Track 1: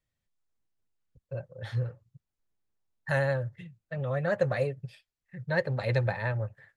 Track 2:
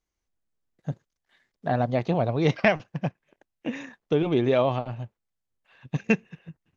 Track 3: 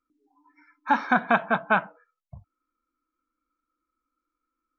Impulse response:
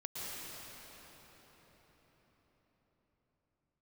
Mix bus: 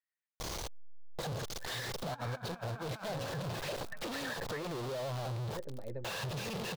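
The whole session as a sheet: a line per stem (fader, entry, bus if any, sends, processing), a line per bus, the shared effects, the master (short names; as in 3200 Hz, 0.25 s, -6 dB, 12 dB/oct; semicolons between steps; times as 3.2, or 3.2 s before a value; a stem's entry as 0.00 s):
-3.5 dB, 0.00 s, bus A, no send, LFO band-pass square 0.3 Hz 310–1800 Hz
-14.0 dB, 0.40 s, bus A, no send, infinite clipping; graphic EQ 125/250/500/1000/2000/4000 Hz +10/-3/+9/+6/-3/+8 dB
-12.0 dB, 1.25 s, no bus, send -19 dB, dry
bus A: 0.0 dB, compressor 10:1, threshold -36 dBFS, peak gain reduction 5.5 dB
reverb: on, RT60 5.3 s, pre-delay 0.105 s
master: negative-ratio compressor -37 dBFS, ratio -0.5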